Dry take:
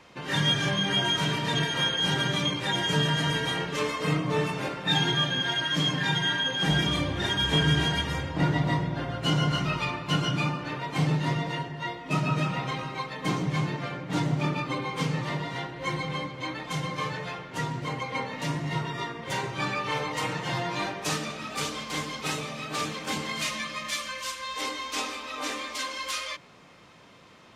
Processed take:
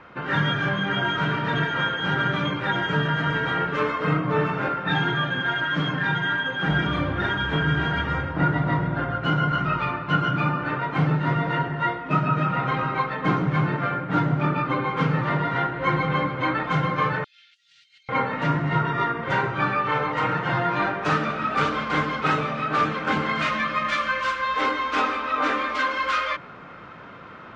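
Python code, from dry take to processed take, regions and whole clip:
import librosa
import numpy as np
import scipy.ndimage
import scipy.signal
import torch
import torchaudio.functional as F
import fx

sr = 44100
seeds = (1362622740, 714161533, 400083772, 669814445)

y = fx.chain(x, sr, fx.cheby2_highpass(hz=1100.0, order=4, stop_db=60),
    fx.over_compress(threshold_db=-57.0, ratio=-1.0), at=(17.24, 18.09))
y = scipy.signal.sosfilt(scipy.signal.butter(2, 2100.0, 'lowpass', fs=sr, output='sos'), y)
y = fx.peak_eq(y, sr, hz=1400.0, db=11.0, octaves=0.37)
y = fx.rider(y, sr, range_db=10, speed_s=0.5)
y = y * librosa.db_to_amplitude(4.5)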